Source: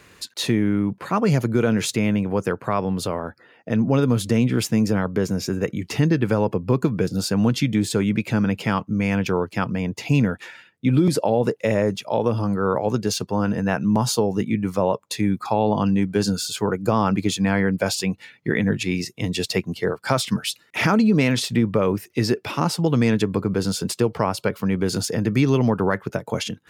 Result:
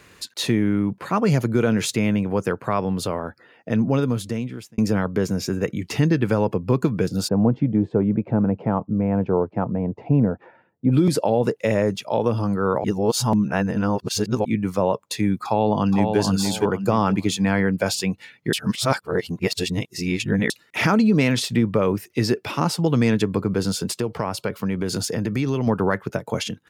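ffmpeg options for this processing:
-filter_complex "[0:a]asplit=3[s0][s1][s2];[s0]afade=t=out:st=7.27:d=0.02[s3];[s1]lowpass=f=740:t=q:w=1.5,afade=t=in:st=7.27:d=0.02,afade=t=out:st=10.91:d=0.02[s4];[s2]afade=t=in:st=10.91:d=0.02[s5];[s3][s4][s5]amix=inputs=3:normalize=0,asplit=2[s6][s7];[s7]afade=t=in:st=15.45:d=0.01,afade=t=out:st=16.18:d=0.01,aecho=0:1:470|940|1410|1880:0.595662|0.178699|0.0536096|0.0160829[s8];[s6][s8]amix=inputs=2:normalize=0,asettb=1/sr,asplit=3[s9][s10][s11];[s9]atrim=end=23.844[s12];[s10]atrim=start=23.84:end=25.67,asetpts=PTS-STARTPTS,afade=t=in:d=0.004:c=qsin,afade=t=out:st=1.826:d=0.004:c=qsin,acompressor=threshold=0.1:ratio=2.5:attack=3.2:release=140:knee=1:detection=peak[s13];[s11]atrim=start=25.666[s14];[s12][s13]acrossfade=d=0.004:c1=hsin:c2=qsin[s15];[s15][s14]acrossfade=d=0.004:c1=qsin:c2=hsin,asplit=6[s16][s17][s18][s19][s20][s21];[s16]atrim=end=4.78,asetpts=PTS-STARTPTS,afade=t=out:st=3.79:d=0.99[s22];[s17]atrim=start=4.78:end=12.842,asetpts=PTS-STARTPTS,afade=t=in:d=0.004:c=hsin[s23];[s18]atrim=start=12.838:end=14.452,asetpts=PTS-STARTPTS,areverse[s24];[s19]atrim=start=14.448:end=18.532[s25];[s20]atrim=start=18.528:end=20.502,asetpts=PTS-STARTPTS,areverse[s26];[s21]atrim=start=20.498[s27];[s22][s23]concat=n=2:v=0:a=1[s28];[s28][s24]acrossfade=d=0.004:c1=hsin:c2=hsin[s29];[s29][s25]acrossfade=d=0.004:c1=hsin:c2=hsin[s30];[s30][s26]acrossfade=d=0.004:c1=hsin:c2=hsin[s31];[s31][s27]acrossfade=d=0.004:c1=hsin:c2=hsin"

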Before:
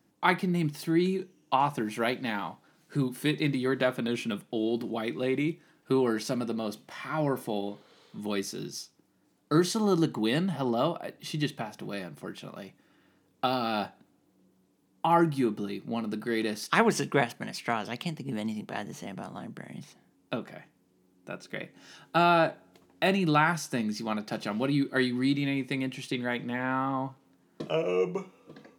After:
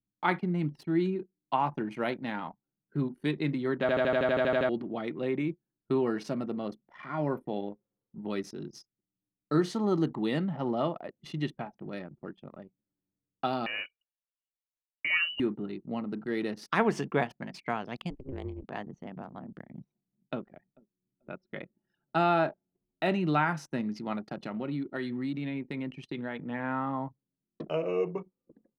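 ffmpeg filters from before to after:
-filter_complex "[0:a]asettb=1/sr,asplit=3[s0][s1][s2];[s0]atrim=end=13.664[s3];[s1]atrim=start=13.66:end=15.4,asetpts=PTS-STARTPTS,afade=t=in:d=0.004:c=qsin,afade=t=out:st=1.736:d=0.004:c=qsin,lowpass=f=2600:t=q:w=0.5098,lowpass=f=2600:t=q:w=0.6013,lowpass=f=2600:t=q:w=0.9,lowpass=f=2600:t=q:w=2.563,afreqshift=-3100[s4];[s2]atrim=start=15.396[s5];[s3][s4]acrossfade=d=0.004:c1=hsin:c2=qsin[s6];[s6][s5]acrossfade=d=0.004:c1=qsin:c2=hsin,asettb=1/sr,asplit=3[s7][s8][s9];[s7]atrim=end=18.104[s10];[s8]atrim=start=18.1:end=18.64,asetpts=PTS-STARTPTS,afade=t=in:d=0.004:c=qsin,afade=t=out:st=0.536:d=0.004:c=qsin,aeval=exprs='val(0)*sin(2*PI*130*n/s)':c=same[s11];[s9]atrim=start=18.636[s12];[s10][s11]acrossfade=d=0.004:c1=hsin:c2=qsin[s13];[s13][s12]acrossfade=d=0.004:c1=qsin:c2=hsin,asplit=2[s14][s15];[s15]afade=t=in:st=19.67:d=0.01,afade=t=out:st=20.44:d=0.01,aecho=0:1:440|880|1320|1760|2200|2640:0.149624|0.0897741|0.0538645|0.0323187|0.0193912|0.0116347[s16];[s14][s16]amix=inputs=2:normalize=0,asettb=1/sr,asplit=3[s17][s18][s19];[s17]atrim=end=24.214[s20];[s18]atrim=start=24.21:end=26.5,asetpts=PTS-STARTPTS,afade=t=in:d=0.004:c=qsin,afade=t=out:st=2.286:d=0.004:c=qsin,acompressor=threshold=0.0355:ratio=2.5:attack=3.2:release=140:knee=1:detection=peak[s21];[s19]atrim=start=26.496[s22];[s20][s21]acrossfade=d=0.004:c1=hsin:c2=qsin[s23];[s23][s22]acrossfade=d=0.004:c1=qsin:c2=hsin,asplit=12[s24][s25][s26][s27][s28][s29][s30][s31][s32][s33][s34][s35];[s24]atrim=end=3.892[s36];[s25]atrim=start=3.808:end=3.892[s37];[s26]atrim=start=3.808:end=3.892[s38];[s27]atrim=start=3.808:end=3.892[s39];[s28]atrim=start=3.808:end=3.892[s40];[s29]atrim=start=3.808:end=3.892[s41];[s30]atrim=start=3.808:end=3.892[s42];[s31]atrim=start=3.808:end=3.892[s43];[s32]atrim=start=3.808:end=3.892[s44];[s33]atrim=start=3.808:end=3.892[s45];[s34]atrim=start=3.808:end=3.892[s46];[s35]atrim=start=4.688[s47];[s36][s37]acrossfade=d=0.004:c1=hsin:c2=hsin[s48];[s48][s38]acrossfade=d=0.004:c1=hsin:c2=hsin[s49];[s49][s39]acrossfade=d=0.004:c1=hsin:c2=hsin[s50];[s50][s40]acrossfade=d=0.004:c1=hsin:c2=hsin[s51];[s51][s41]acrossfade=d=0.004:c1=hsin:c2=hsin[s52];[s52][s42]acrossfade=d=0.004:c1=hsin:c2=hsin[s53];[s53][s43]acrossfade=d=0.004:c1=hsin:c2=hsin[s54];[s54][s44]acrossfade=d=0.004:c1=hsin:c2=hsin[s55];[s55][s45]acrossfade=d=0.004:c1=hsin:c2=hsin[s56];[s56][s46]acrossfade=d=0.004:c1=hsin:c2=hsin[s57];[s57][s47]acrossfade=d=0.004:c1=hsin:c2=hsin,anlmdn=0.631,lowpass=f=2100:p=1,volume=0.794"

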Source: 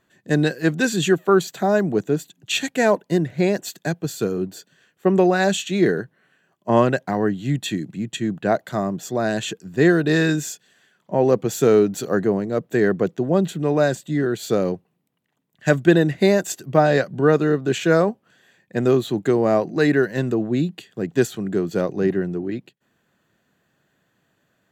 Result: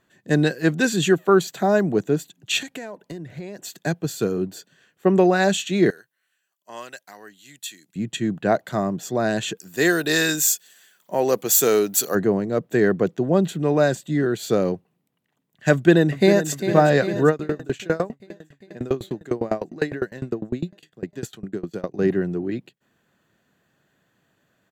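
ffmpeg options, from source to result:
-filter_complex "[0:a]asettb=1/sr,asplit=3[s0][s1][s2];[s0]atrim=end=2.624[s3];[s1]atrim=start=2.62:end=3.79,asetpts=PTS-STARTPTS,afade=t=in:d=0.004:c=qsin,afade=t=out:st=1.166:d=0.004:c=qsin,acompressor=threshold=0.0316:ratio=12:attack=3.2:release=140:knee=1:detection=peak[s4];[s2]atrim=start=3.786[s5];[s3][s4]acrossfade=d=0.004:c1=hsin:c2=qsin[s6];[s6][s5]acrossfade=d=0.004:c1=qsin:c2=hsin,asettb=1/sr,asplit=3[s7][s8][s9];[s7]atrim=end=5.904[s10];[s8]atrim=start=5.9:end=7.96,asetpts=PTS-STARTPTS,afade=t=in:d=0.004:c=qsin,afade=t=out:st=2.056:d=0.004:c=qsin,aderivative[s11];[s9]atrim=start=7.956[s12];[s10][s11]acrossfade=d=0.004:c1=hsin:c2=qsin[s13];[s13][s12]acrossfade=d=0.004:c1=qsin:c2=hsin,asplit=3[s14][s15][s16];[s14]afade=t=out:st=9.57:d=0.02[s17];[s15]aemphasis=mode=production:type=riaa,afade=t=in:st=9.57:d=0.02,afade=t=out:st=12.14:d=0.02[s18];[s16]afade=t=in:st=12.14:d=0.02[s19];[s17][s18][s19]amix=inputs=3:normalize=0,asplit=2[s20][s21];[s21]afade=t=in:st=15.72:d=0.01,afade=t=out:st=16.49:d=0.01,aecho=0:1:400|800|1200|1600|2000|2400|2800|3200|3600|4000|4400|4800:0.316228|0.237171|0.177878|0.133409|0.100056|0.0750423|0.0562817|0.0422113|0.0316585|0.0237439|0.0178079|0.0133559[s22];[s20][s22]amix=inputs=2:normalize=0,asettb=1/sr,asplit=3[s23][s24][s25];[s23]atrim=end=17.294[s26];[s24]atrim=start=17.29:end=21.99,asetpts=PTS-STARTPTS,afade=t=in:d=0.004:c=qsin,afade=t=out:st=4.696:d=0.004:c=qsin,aeval=exprs='val(0)*pow(10,-26*if(lt(mod(9.9*n/s,1),2*abs(9.9)/1000),1-mod(9.9*n/s,1)/(2*abs(9.9)/1000),(mod(9.9*n/s,1)-2*abs(9.9)/1000)/(1-2*abs(9.9)/1000))/20)':c=same[s27];[s25]atrim=start=21.986[s28];[s26][s27]acrossfade=d=0.004:c1=hsin:c2=qsin[s29];[s29][s28]acrossfade=d=0.004:c1=qsin:c2=hsin"

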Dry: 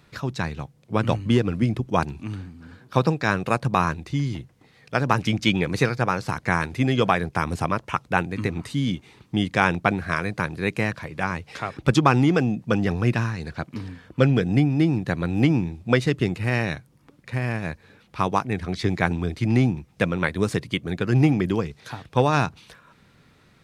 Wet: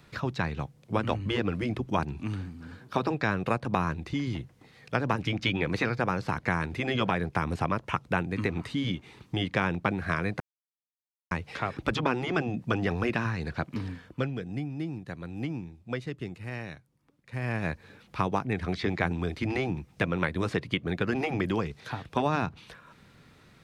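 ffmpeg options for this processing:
-filter_complex "[0:a]asplit=5[s0][s1][s2][s3][s4];[s0]atrim=end=10.4,asetpts=PTS-STARTPTS,afade=t=out:st=10.396:d=0.004:c=hsin[s5];[s1]atrim=start=10.4:end=11.31,asetpts=PTS-STARTPTS,volume=0[s6];[s2]atrim=start=11.31:end=14.31,asetpts=PTS-STARTPTS,afade=t=in:d=0.004:c=hsin,afade=t=out:st=2.6:d=0.4:silence=0.199526[s7];[s3]atrim=start=14.31:end=17.27,asetpts=PTS-STARTPTS,volume=0.2[s8];[s4]atrim=start=17.27,asetpts=PTS-STARTPTS,afade=t=in:d=0.4:silence=0.199526[s9];[s5][s6][s7][s8][s9]concat=n=5:v=0:a=1,afftfilt=real='re*lt(hypot(re,im),0.708)':imag='im*lt(hypot(re,im),0.708)':win_size=1024:overlap=0.75,acrossover=split=420|4100[s10][s11][s12];[s10]acompressor=threshold=0.0398:ratio=4[s13];[s11]acompressor=threshold=0.0501:ratio=4[s14];[s12]acompressor=threshold=0.00126:ratio=4[s15];[s13][s14][s15]amix=inputs=3:normalize=0"

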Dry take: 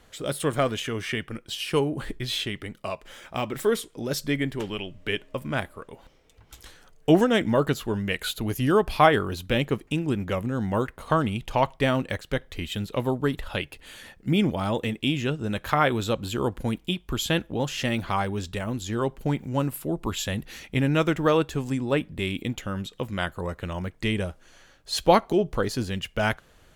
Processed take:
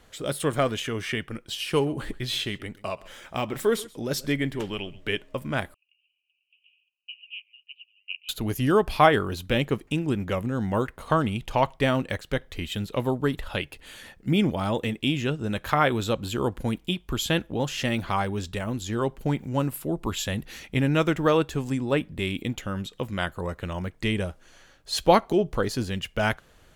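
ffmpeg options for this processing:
-filter_complex "[0:a]asettb=1/sr,asplit=3[s0][s1][s2];[s0]atrim=end=1.494[s3];[s1]atrim=start=1.49:end=5.09,asetpts=PTS-STARTPTS,afade=t=in:d=0.004:c=qsin,afade=t=out:st=3.596:d=0.004:c=qsin,aecho=1:1:130:0.0944,atrim=end_sample=158760[s4];[s2]atrim=start=5.086[s5];[s3][s4]acrossfade=d=0.004:c1=hsin:c2=qsin[s6];[s6][s5]acrossfade=d=0.004:c1=qsin:c2=hsin,asettb=1/sr,asplit=3[s7][s8][s9];[s7]atrim=end=5.744[s10];[s8]atrim=start=5.74:end=8.29,asetpts=PTS-STARTPTS,afade=t=in:d=0.004:c=qsin,afade=t=out:st=2.546:d=0.004:c=qsin,asuperpass=centerf=2700:order=8:qfactor=5.2[s11];[s9]atrim=start=8.286[s12];[s10][s11]acrossfade=d=0.004:c1=hsin:c2=qsin[s13];[s13][s12]acrossfade=d=0.004:c1=qsin:c2=hsin"

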